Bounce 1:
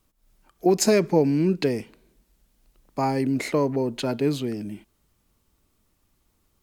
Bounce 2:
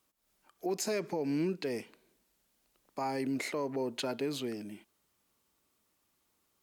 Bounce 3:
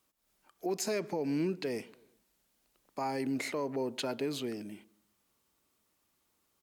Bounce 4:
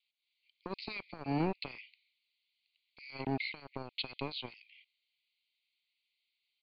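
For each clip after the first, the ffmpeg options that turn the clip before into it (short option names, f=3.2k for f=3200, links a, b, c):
-af "highpass=f=450:p=1,alimiter=limit=-21dB:level=0:latency=1:release=109,volume=-3.5dB"
-filter_complex "[0:a]asplit=2[a][b];[b]adelay=128,lowpass=f=1.1k:p=1,volume=-22dB,asplit=2[c][d];[d]adelay=128,lowpass=f=1.1k:p=1,volume=0.46,asplit=2[e][f];[f]adelay=128,lowpass=f=1.1k:p=1,volume=0.46[g];[a][c][e][g]amix=inputs=4:normalize=0"
-filter_complex "[0:a]acrossover=split=420[a][b];[a]acrusher=bits=4:mix=0:aa=0.5[c];[b]asuperpass=centerf=3100:order=20:qfactor=1.2[d];[c][d]amix=inputs=2:normalize=0,volume=2dB"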